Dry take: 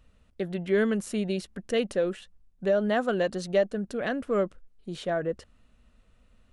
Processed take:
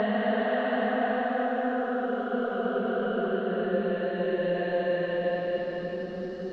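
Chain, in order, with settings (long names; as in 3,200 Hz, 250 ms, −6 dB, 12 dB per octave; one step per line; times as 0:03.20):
extreme stretch with random phases 15×, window 0.25 s, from 0:02.91
high-frequency loss of the air 240 metres
level −1 dB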